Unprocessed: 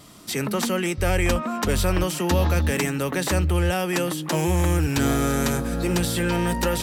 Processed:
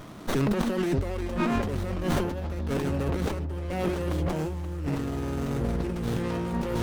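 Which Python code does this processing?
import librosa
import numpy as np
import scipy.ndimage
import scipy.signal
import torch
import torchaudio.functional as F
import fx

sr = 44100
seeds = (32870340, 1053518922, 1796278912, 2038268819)

y = fx.echo_wet_lowpass(x, sr, ms=570, feedback_pct=58, hz=800.0, wet_db=-7.0)
y = fx.over_compress(y, sr, threshold_db=-28.0, ratio=-1.0)
y = fx.high_shelf(y, sr, hz=8900.0, db=-6.0)
y = fx.running_max(y, sr, window=17)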